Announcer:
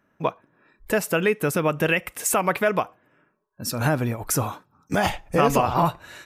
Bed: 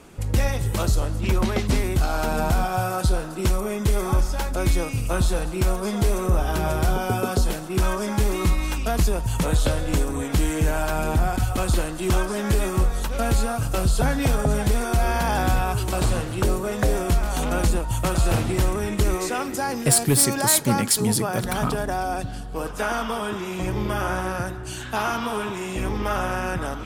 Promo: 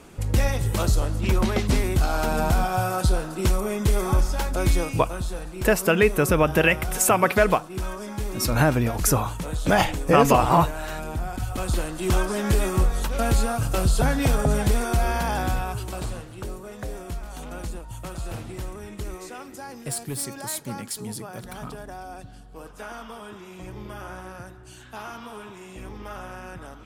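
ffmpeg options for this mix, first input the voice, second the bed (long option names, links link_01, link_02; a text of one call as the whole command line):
ffmpeg -i stem1.wav -i stem2.wav -filter_complex "[0:a]adelay=4750,volume=2.5dB[link_01];[1:a]volume=8.5dB,afade=type=out:start_time=4.85:duration=0.26:silence=0.375837,afade=type=in:start_time=11.26:duration=0.99:silence=0.375837,afade=type=out:start_time=14.7:duration=1.58:silence=0.237137[link_02];[link_01][link_02]amix=inputs=2:normalize=0" out.wav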